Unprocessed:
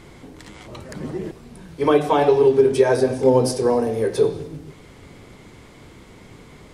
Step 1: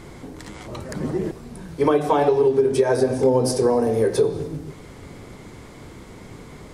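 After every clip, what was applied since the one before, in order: peaking EQ 2.9 kHz -4.5 dB 1.1 oct; compression 4:1, threshold -19 dBFS, peak gain reduction 8.5 dB; trim +4 dB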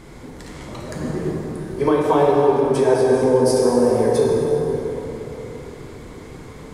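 plate-style reverb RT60 4 s, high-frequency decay 0.55×, DRR -2.5 dB; trim -2 dB

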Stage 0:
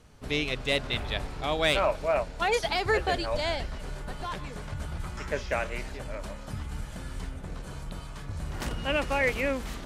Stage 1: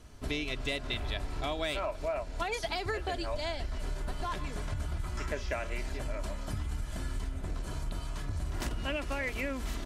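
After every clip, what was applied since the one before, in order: tone controls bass +3 dB, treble +2 dB; comb 3 ms, depth 43%; compression 10:1, threshold -30 dBFS, peak gain reduction 11.5 dB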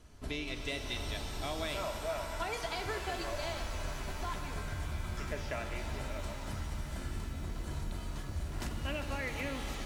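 pitch-shifted reverb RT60 3.3 s, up +7 st, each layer -2 dB, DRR 6 dB; trim -4.5 dB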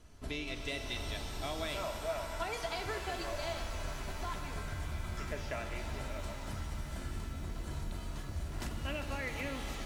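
feedback comb 670 Hz, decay 0.43 s, mix 60%; trim +6.5 dB

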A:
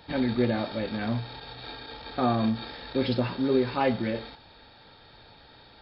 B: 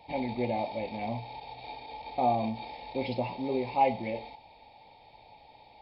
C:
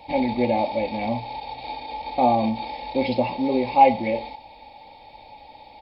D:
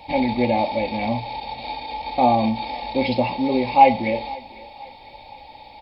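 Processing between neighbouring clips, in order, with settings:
FFT filter 390 Hz 0 dB, 860 Hz +14 dB, 1.5 kHz -24 dB, 2.2 kHz +10 dB, 3.3 kHz -1 dB; trim -8 dB
comb 3.6 ms, depth 42%; trim +8 dB
peaking EQ 440 Hz -4 dB 2 oct; thinning echo 503 ms, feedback 47%, high-pass 320 Hz, level -20 dB; trim +4.5 dB

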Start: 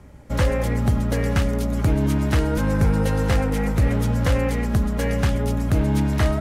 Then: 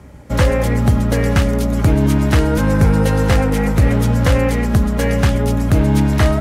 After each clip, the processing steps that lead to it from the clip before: high-pass 44 Hz; trim +6.5 dB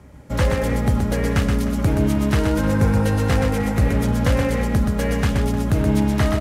multi-tap echo 125/306 ms -5/-15 dB; trim -5.5 dB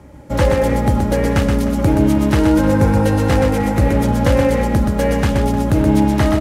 small resonant body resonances 320/550/840 Hz, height 8 dB; trim +2.5 dB

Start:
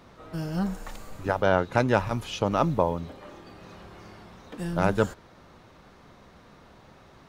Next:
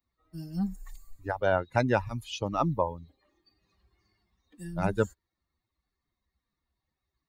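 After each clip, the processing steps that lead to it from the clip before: expander on every frequency bin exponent 2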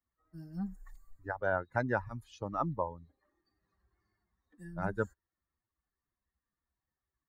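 resonant high shelf 2.1 kHz -7 dB, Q 3; trim -7.5 dB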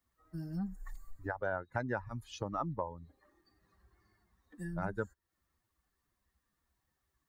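compression 2.5:1, threshold -47 dBFS, peak gain reduction 14.5 dB; trim +8.5 dB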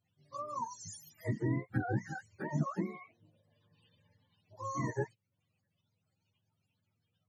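spectrum inverted on a logarithmic axis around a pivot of 430 Hz; trim +2.5 dB

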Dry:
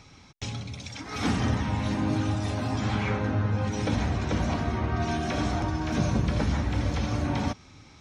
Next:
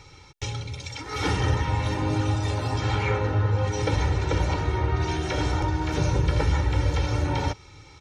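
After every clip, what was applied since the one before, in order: comb 2.2 ms, depth 86%; trim +1 dB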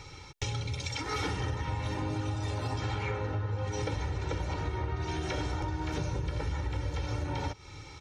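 compression 10:1, threshold -31 dBFS, peak gain reduction 14 dB; trim +1.5 dB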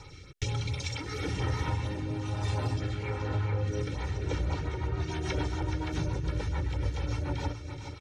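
LFO notch sine 4.3 Hz 480–7400 Hz; delay 425 ms -9.5 dB; rotary cabinet horn 1.1 Hz, later 7 Hz, at 3.78 s; trim +3 dB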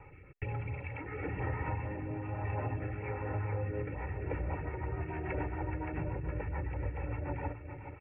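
rippled Chebyshev low-pass 2.7 kHz, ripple 6 dB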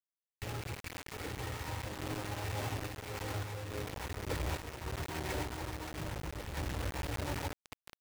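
bit crusher 6-bit; random-step tremolo; trim -1.5 dB

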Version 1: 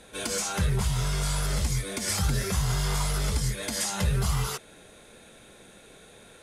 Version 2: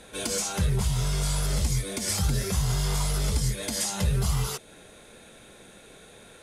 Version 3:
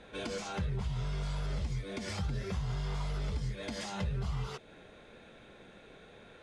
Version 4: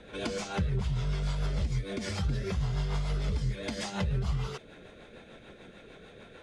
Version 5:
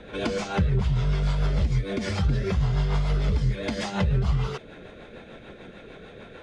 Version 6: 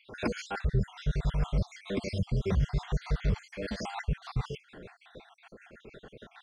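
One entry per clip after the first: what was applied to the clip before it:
in parallel at +0.5 dB: gain riding; on the sum: dynamic bell 1.5 kHz, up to -5 dB, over -40 dBFS, Q 0.87; trim -5 dB
low-pass 3.2 kHz 12 dB/octave; compression 2:1, threshold -32 dBFS, peak gain reduction 7 dB; trim -3.5 dB
rotary cabinet horn 6.7 Hz; trim +6 dB
low-pass 3.5 kHz 6 dB/octave; trim +7 dB
random holes in the spectrogram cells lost 60%; trim -2.5 dB

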